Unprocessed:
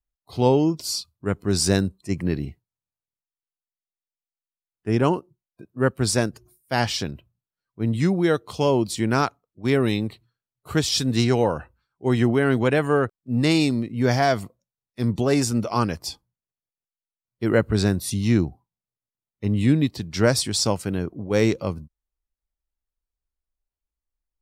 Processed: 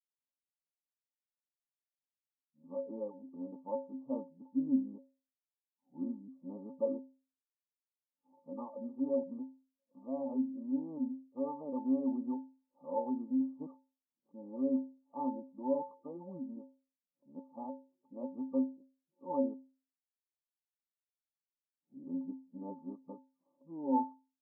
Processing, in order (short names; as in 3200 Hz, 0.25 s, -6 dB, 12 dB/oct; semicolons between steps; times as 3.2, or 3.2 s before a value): whole clip reversed; brick-wall FIR band-pass 150–1200 Hz; metallic resonator 260 Hz, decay 0.38 s, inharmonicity 0.03